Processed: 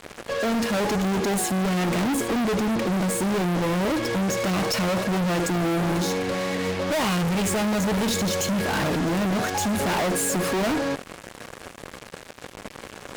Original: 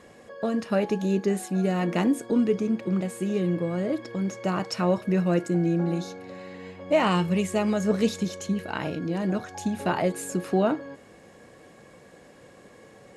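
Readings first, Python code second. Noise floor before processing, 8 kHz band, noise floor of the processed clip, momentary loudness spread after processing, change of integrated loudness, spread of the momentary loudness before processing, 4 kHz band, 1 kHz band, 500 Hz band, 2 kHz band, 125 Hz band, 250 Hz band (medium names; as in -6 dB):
-52 dBFS, +11.5 dB, -44 dBFS, 17 LU, +2.5 dB, 8 LU, +9.0 dB, +4.5 dB, +1.0 dB, +7.5 dB, +2.0 dB, +1.5 dB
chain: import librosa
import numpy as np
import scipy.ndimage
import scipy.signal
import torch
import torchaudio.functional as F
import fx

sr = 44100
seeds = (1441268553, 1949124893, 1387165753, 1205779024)

y = x + 10.0 ** (-18.0 / 20.0) * np.pad(x, (int(75 * sr / 1000.0), 0))[:len(x)]
y = fx.fuzz(y, sr, gain_db=45.0, gate_db=-47.0)
y = F.gain(torch.from_numpy(y), -9.0).numpy()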